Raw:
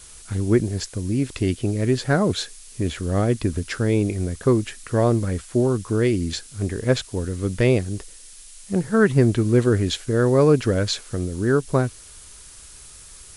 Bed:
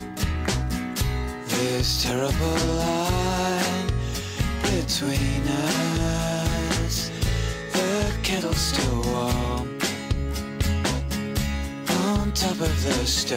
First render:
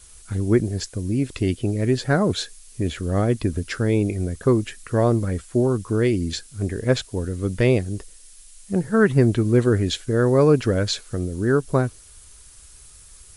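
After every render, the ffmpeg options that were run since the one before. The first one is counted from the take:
-af "afftdn=nr=6:nf=-44"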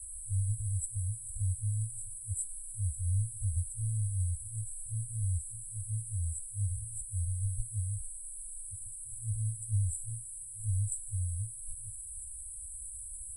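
-af "afftfilt=real='re*(1-between(b*sr/4096,110,7700))':imag='im*(1-between(b*sr/4096,110,7700))':win_size=4096:overlap=0.75,equalizer=f=125:t=o:w=1:g=-8,equalizer=f=500:t=o:w=1:g=5,equalizer=f=8k:t=o:w=1:g=7"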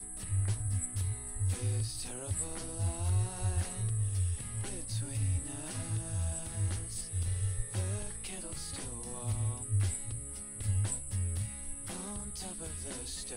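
-filter_complex "[1:a]volume=-21dB[a];[0:a][a]amix=inputs=2:normalize=0"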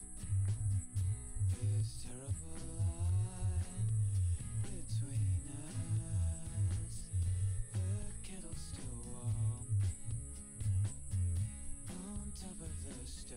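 -filter_complex "[0:a]alimiter=level_in=2.5dB:limit=-24dB:level=0:latency=1:release=162,volume=-2.5dB,acrossover=split=250[a][b];[b]acompressor=threshold=-55dB:ratio=2.5[c];[a][c]amix=inputs=2:normalize=0"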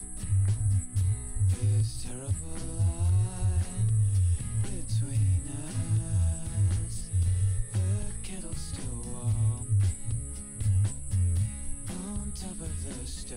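-af "volume=9.5dB"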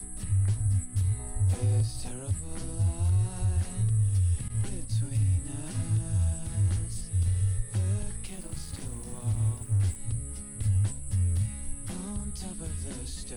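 -filter_complex "[0:a]asettb=1/sr,asplit=3[a][b][c];[a]atrim=end=1.194[d];[b]atrim=start=1.19:end=2.09,asetpts=PTS-STARTPTS,afade=t=in:d=0.004:c=qsin,afade=t=out:st=0.896:d=0.004:c=qsin,equalizer=f=660:w=1.3:g=11[e];[c]atrim=start=2.086[f];[d][e]acrossfade=d=0.004:c1=hsin:c2=qsin[g];[g][f]acrossfade=d=0.004:c1=qsin:c2=hsin,asettb=1/sr,asplit=3[h][i][j];[h]atrim=end=4.484[k];[i]atrim=start=4.48:end=5.27,asetpts=PTS-STARTPTS,afade=t=in:d=0.004:c=qsin,afade=t=out:st=0.786:d=0.004:c=qsin,agate=range=-33dB:threshold=-33dB:ratio=3:release=100:detection=peak[l];[j]atrim=start=5.266[m];[k][l]acrossfade=d=0.004:c1=hsin:c2=qsin[n];[n][m]acrossfade=d=0.004:c1=qsin:c2=hsin,asettb=1/sr,asplit=3[o][p][q];[o]atrim=end=8.264[r];[p]atrim=start=8.26:end=9.96,asetpts=PTS-STARTPTS,afade=t=in:d=0.004:c=qsin,afade=t=out:st=1.696:d=0.004:c=qsin,aeval=exprs='sgn(val(0))*max(abs(val(0))-0.00531,0)':c=same[s];[q]atrim=start=9.956[t];[r][s]acrossfade=d=0.004:c1=hsin:c2=qsin[u];[u][t]acrossfade=d=0.004:c1=qsin:c2=hsin"

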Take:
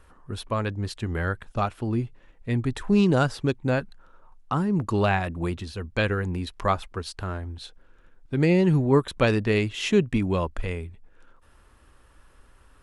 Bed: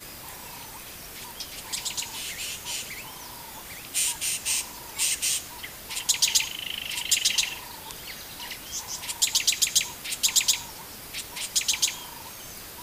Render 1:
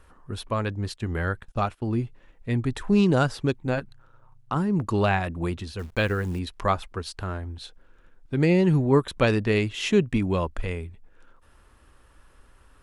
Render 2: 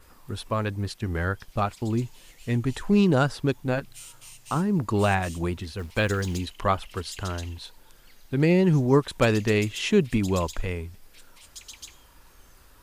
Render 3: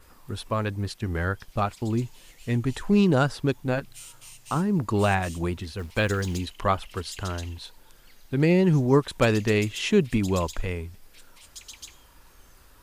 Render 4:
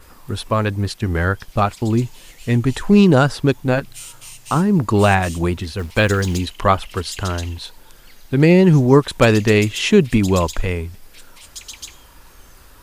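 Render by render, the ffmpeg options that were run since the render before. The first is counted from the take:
-filter_complex "[0:a]asplit=3[a][b][c];[a]afade=t=out:st=0.95:d=0.02[d];[b]agate=range=-16dB:threshold=-44dB:ratio=16:release=100:detection=peak,afade=t=in:st=0.95:d=0.02,afade=t=out:st=2:d=0.02[e];[c]afade=t=in:st=2:d=0.02[f];[d][e][f]amix=inputs=3:normalize=0,asettb=1/sr,asplit=3[g][h][i];[g]atrim=end=3.624[j];[h]atrim=start=3.62:end=4.56,asetpts=PTS-STARTPTS,afade=t=in:d=0.004:c=qsin,afade=t=out:st=0.936:d=0.004:c=qsin,tremolo=f=120:d=0.571[k];[i]atrim=start=4.556[l];[j][k]acrossfade=d=0.004:c1=hsin:c2=qsin[m];[m][l]acrossfade=d=0.004:c1=qsin:c2=hsin,asettb=1/sr,asplit=3[n][o][p];[n]atrim=end=5.794[q];[o]atrim=start=5.79:end=6.39,asetpts=PTS-STARTPTS,afade=t=in:d=0.004:c=qsin,afade=t=out:st=0.596:d=0.004:c=qsin,acrusher=bits=9:dc=4:mix=0:aa=0.000001[r];[p]atrim=start=6.386[s];[q][r]acrossfade=d=0.004:c1=hsin:c2=qsin[t];[t][s]acrossfade=d=0.004:c1=qsin:c2=hsin"
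-filter_complex "[1:a]volume=-19dB[a];[0:a][a]amix=inputs=2:normalize=0"
-af anull
-af "volume=8.5dB,alimiter=limit=-1dB:level=0:latency=1"

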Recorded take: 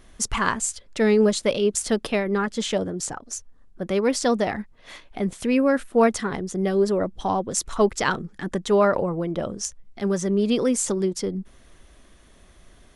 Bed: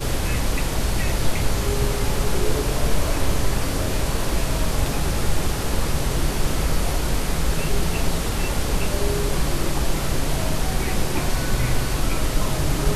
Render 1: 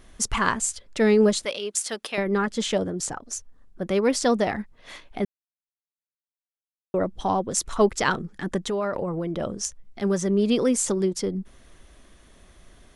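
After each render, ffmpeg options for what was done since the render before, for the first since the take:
-filter_complex "[0:a]asettb=1/sr,asplit=3[a][b][c];[a]atrim=end=1.454[d];[b]atrim=start=1.45:end=2.18,asetpts=PTS-STARTPTS,afade=t=in:d=0.004:c=qsin,afade=t=out:st=0.726:d=0.004:c=qsin,highpass=f=1.3k:p=1[e];[c]atrim=start=2.176[f];[d][e]acrossfade=d=0.004:c1=hsin:c2=qsin[g];[g][f]acrossfade=d=0.004:c1=qsin:c2=hsin,asplit=3[h][i][j];[h]afade=t=out:st=8.66:d=0.02[k];[i]acompressor=threshold=-24dB:ratio=4:attack=3.2:release=140:knee=1:detection=peak,afade=t=in:st=8.66:d=0.02,afade=t=out:st=9.39:d=0.02[l];[j]afade=t=in:st=9.39:d=0.02[m];[k][l][m]amix=inputs=3:normalize=0,asplit=3[n][o][p];[n]atrim=end=5.25,asetpts=PTS-STARTPTS,afade=t=out:st=5.246:d=0.004:c=hsin[q];[o]atrim=start=5.25:end=6.94,asetpts=PTS-STARTPTS,volume=0[r];[p]atrim=start=6.94,asetpts=PTS-STARTPTS,afade=t=in:d=0.004:c=hsin[s];[q][r][s]concat=n=3:v=0:a=1"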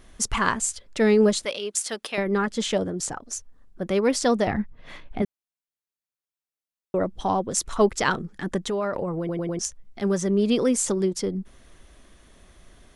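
-filter_complex "[0:a]asettb=1/sr,asplit=3[a][b][c];[a]atrim=end=4.474[d];[b]atrim=start=4.47:end=5.22,asetpts=PTS-STARTPTS,afade=t=in:d=0.004:c=qsin,afade=t=out:st=0.746:d=0.004:c=qsin,bass=f=250:g=9,treble=f=4k:g=-10[e];[c]atrim=start=5.216[f];[d][e]acrossfade=d=0.004:c1=hsin:c2=qsin[g];[g][f]acrossfade=d=0.004:c1=qsin:c2=hsin,asplit=5[h][i][j][k][l];[h]atrim=end=9.292[m];[i]atrim=start=9.188:end=9.292[n];[j]atrim=start=9.188:end=9.292[o];[k]atrim=start=9.188:end=9.292[p];[l]atrim=start=9.588[q];[m][n]acrossfade=d=0.004:c1=hsin:c2=hsin[r];[r][o]acrossfade=d=0.004:c1=hsin:c2=hsin[s];[s][p]acrossfade=d=0.004:c1=hsin:c2=hsin[t];[t][q]acrossfade=d=0.004:c1=hsin:c2=hsin"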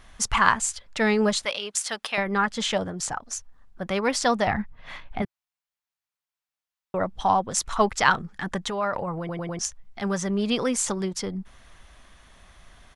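-af "firequalizer=gain_entry='entry(120,0);entry(350,-8);entry(800,5);entry(9100,-2)':delay=0.05:min_phase=1"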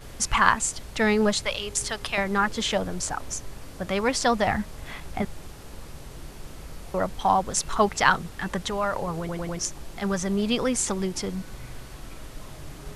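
-filter_complex "[1:a]volume=-19dB[a];[0:a][a]amix=inputs=2:normalize=0"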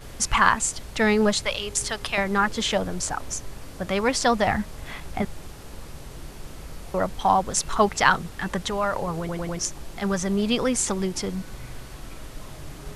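-af "volume=1.5dB,alimiter=limit=-2dB:level=0:latency=1"

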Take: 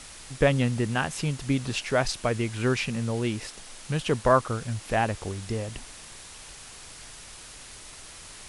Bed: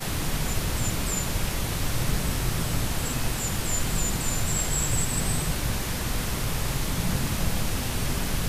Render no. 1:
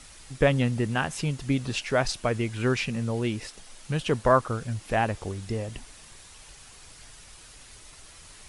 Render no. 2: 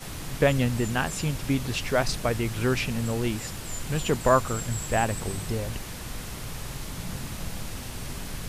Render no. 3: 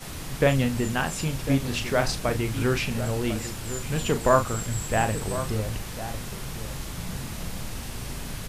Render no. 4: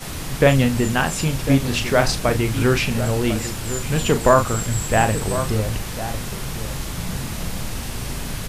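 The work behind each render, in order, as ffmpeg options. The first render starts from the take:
-af "afftdn=nr=6:nf=-45"
-filter_complex "[1:a]volume=-8.5dB[a];[0:a][a]amix=inputs=2:normalize=0"
-filter_complex "[0:a]asplit=2[a][b];[b]adelay=37,volume=-8.5dB[c];[a][c]amix=inputs=2:normalize=0,asplit=2[d][e];[e]adelay=1050,volume=-11dB,highshelf=f=4k:g=-23.6[f];[d][f]amix=inputs=2:normalize=0"
-af "volume=6.5dB,alimiter=limit=-2dB:level=0:latency=1"

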